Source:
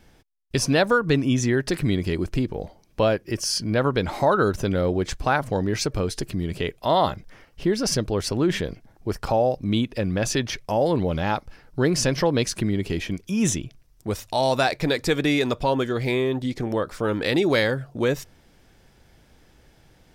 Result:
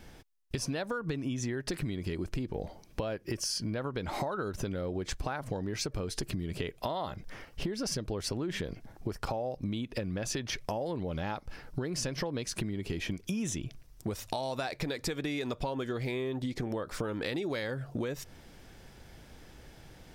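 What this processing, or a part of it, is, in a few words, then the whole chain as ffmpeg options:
serial compression, peaks first: -af "acompressor=threshold=-29dB:ratio=6,acompressor=threshold=-35dB:ratio=3,volume=3dB"

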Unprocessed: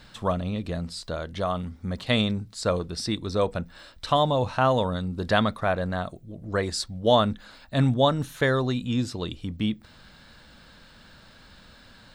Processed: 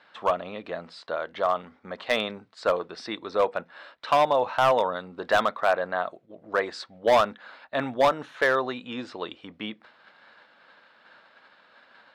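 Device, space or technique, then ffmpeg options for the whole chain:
walkie-talkie: -af "highpass=570,lowpass=2.2k,asoftclip=type=hard:threshold=-19.5dB,agate=range=-6dB:threshold=-56dB:ratio=16:detection=peak,volume=5.5dB"

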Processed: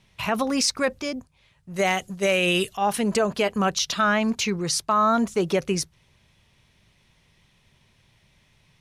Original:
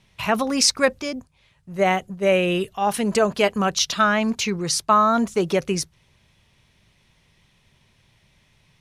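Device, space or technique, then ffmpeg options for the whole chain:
clipper into limiter: -filter_complex "[0:a]asettb=1/sr,asplit=3[a][b][c];[a]atrim=end=1.764[d];[b]atrim=start=1.76:end=2.77,asetpts=PTS-STARTPTS,afade=t=in:d=0.004:c=qsin,afade=t=out:st=1.006:d=0.004:c=qsin,equalizer=f=7.4k:w=0.3:g=13[e];[c]atrim=start=2.766[f];[d][e]acrossfade=d=0.004:c1=hsin:c2=qsin[g];[g][f]acrossfade=d=0.004:c1=qsin:c2=hsin,asoftclip=type=hard:threshold=-6.5dB,alimiter=limit=-11.5dB:level=0:latency=1:release=73,volume=-1dB"

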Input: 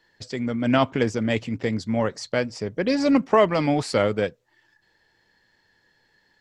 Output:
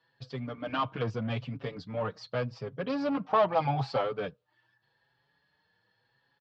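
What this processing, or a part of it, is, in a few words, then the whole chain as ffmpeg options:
barber-pole flanger into a guitar amplifier: -filter_complex "[0:a]asplit=2[a][b];[b]adelay=5.7,afreqshift=0.82[c];[a][c]amix=inputs=2:normalize=1,asoftclip=type=tanh:threshold=-20dB,highpass=76,equalizer=f=88:t=q:w=4:g=-5,equalizer=f=130:t=q:w=4:g=9,equalizer=f=230:t=q:w=4:g=-5,equalizer=f=350:t=q:w=4:g=-8,equalizer=f=1.2k:t=q:w=4:g=5,equalizer=f=2k:t=q:w=4:g=-8,lowpass=f=4.2k:w=0.5412,lowpass=f=4.2k:w=1.3066,asettb=1/sr,asplit=3[d][e][f];[d]atrim=end=3.254[g];[e]atrim=start=3.25:end=4.01,asetpts=PTS-STARTPTS,afade=t=in:d=0.004:c=qsin,afade=t=out:st=0.756:d=0.004:c=qsin,equalizer=f=800:w=3.4:g=13[h];[f]atrim=start=4.006[i];[g][h]acrossfade=d=0.004:c1=hsin:c2=qsin[j];[j][i]acrossfade=d=0.004:c1=qsin:c2=hsin,volume=-3dB"

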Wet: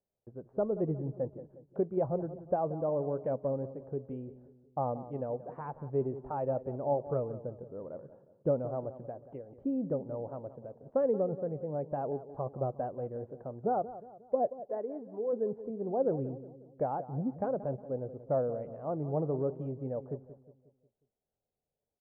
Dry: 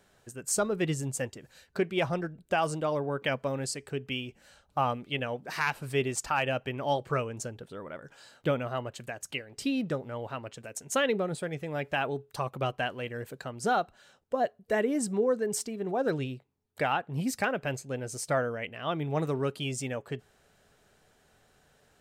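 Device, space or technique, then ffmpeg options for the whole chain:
under water: -filter_complex "[0:a]lowpass=f=830:w=0.5412,lowpass=f=830:w=1.3066,equalizer=f=530:t=o:w=0.45:g=4.5,asplit=3[a][b][c];[a]afade=t=out:st=14.59:d=0.02[d];[b]highpass=f=1k:p=1,afade=t=in:st=14.59:d=0.02,afade=t=out:st=15.32:d=0.02[e];[c]afade=t=in:st=15.32:d=0.02[f];[d][e][f]amix=inputs=3:normalize=0,agate=range=-23dB:threshold=-59dB:ratio=16:detection=peak,asplit=2[g][h];[h]adelay=180,lowpass=f=1.4k:p=1,volume=-13.5dB,asplit=2[i][j];[j]adelay=180,lowpass=f=1.4k:p=1,volume=0.48,asplit=2[k][l];[l]adelay=180,lowpass=f=1.4k:p=1,volume=0.48,asplit=2[m][n];[n]adelay=180,lowpass=f=1.4k:p=1,volume=0.48,asplit=2[o][p];[p]adelay=180,lowpass=f=1.4k:p=1,volume=0.48[q];[g][i][k][m][o][q]amix=inputs=6:normalize=0,volume=-3dB"

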